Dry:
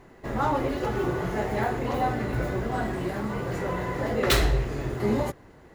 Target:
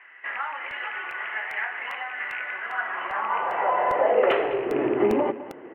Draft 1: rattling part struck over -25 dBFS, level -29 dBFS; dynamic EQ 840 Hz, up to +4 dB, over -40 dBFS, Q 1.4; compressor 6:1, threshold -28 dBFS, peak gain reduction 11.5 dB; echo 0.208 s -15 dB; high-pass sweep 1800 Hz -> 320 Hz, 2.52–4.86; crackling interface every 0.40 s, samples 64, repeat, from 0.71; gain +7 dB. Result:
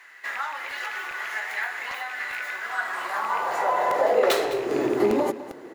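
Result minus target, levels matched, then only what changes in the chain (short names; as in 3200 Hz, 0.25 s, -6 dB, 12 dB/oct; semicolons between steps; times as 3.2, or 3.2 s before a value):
4000 Hz band +5.0 dB
add after dynamic EQ: Chebyshev low-pass 3000 Hz, order 6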